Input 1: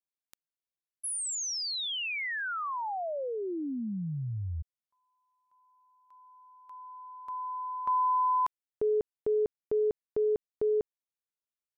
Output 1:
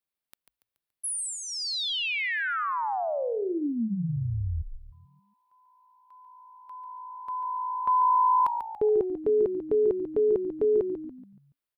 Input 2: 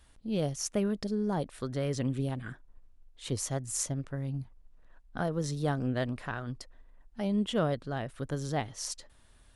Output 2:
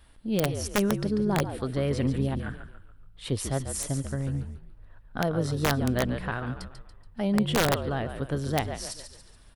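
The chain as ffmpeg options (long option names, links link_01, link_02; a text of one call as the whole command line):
ffmpeg -i in.wav -filter_complex "[0:a]equalizer=frequency=6600:width_type=o:width=0.51:gain=-10.5,asplit=6[link_01][link_02][link_03][link_04][link_05][link_06];[link_02]adelay=142,afreqshift=-57,volume=-8.5dB[link_07];[link_03]adelay=284,afreqshift=-114,volume=-16.2dB[link_08];[link_04]adelay=426,afreqshift=-171,volume=-24dB[link_09];[link_05]adelay=568,afreqshift=-228,volume=-31.7dB[link_10];[link_06]adelay=710,afreqshift=-285,volume=-39.5dB[link_11];[link_01][link_07][link_08][link_09][link_10][link_11]amix=inputs=6:normalize=0,aeval=exprs='(mod(10*val(0)+1,2)-1)/10':channel_layout=same,volume=4.5dB" out.wav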